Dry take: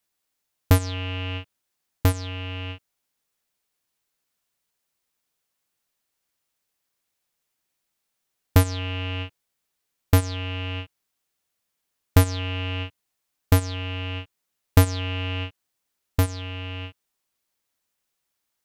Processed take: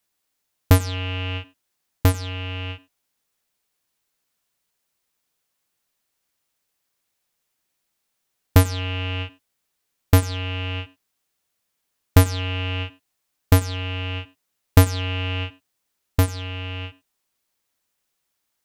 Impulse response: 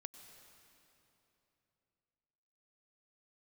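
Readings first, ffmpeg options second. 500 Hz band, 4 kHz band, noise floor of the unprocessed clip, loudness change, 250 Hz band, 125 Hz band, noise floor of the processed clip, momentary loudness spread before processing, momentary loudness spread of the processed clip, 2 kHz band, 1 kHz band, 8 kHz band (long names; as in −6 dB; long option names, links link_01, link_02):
+2.5 dB, +2.5 dB, −79 dBFS, +2.5 dB, +2.5 dB, +2.5 dB, −77 dBFS, 15 LU, 15 LU, +3.0 dB, +2.5 dB, +2.5 dB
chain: -filter_complex "[1:a]atrim=start_sample=2205,atrim=end_sample=4410[link_01];[0:a][link_01]afir=irnorm=-1:irlink=0,volume=8.5dB"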